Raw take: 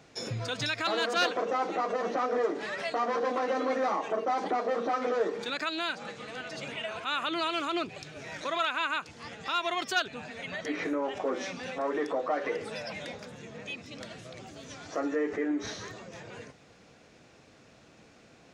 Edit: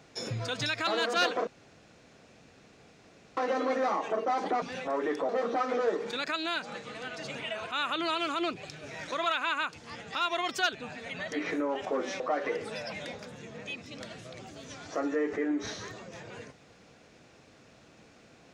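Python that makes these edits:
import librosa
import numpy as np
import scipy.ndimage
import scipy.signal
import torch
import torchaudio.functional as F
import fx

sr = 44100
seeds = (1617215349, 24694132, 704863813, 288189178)

y = fx.edit(x, sr, fx.room_tone_fill(start_s=1.47, length_s=1.9),
    fx.move(start_s=11.53, length_s=0.67, to_s=4.62), tone=tone)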